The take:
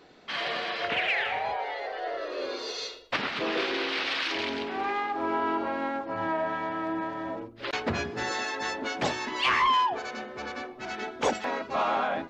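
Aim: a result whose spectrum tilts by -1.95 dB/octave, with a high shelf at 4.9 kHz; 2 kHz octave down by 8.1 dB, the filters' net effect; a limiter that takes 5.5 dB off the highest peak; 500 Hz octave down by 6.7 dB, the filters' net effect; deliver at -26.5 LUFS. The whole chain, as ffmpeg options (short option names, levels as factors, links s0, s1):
-af "equalizer=f=500:t=o:g=-8.5,equalizer=f=2000:t=o:g=-8.5,highshelf=f=4900:g=-8,volume=2.99,alimiter=limit=0.168:level=0:latency=1"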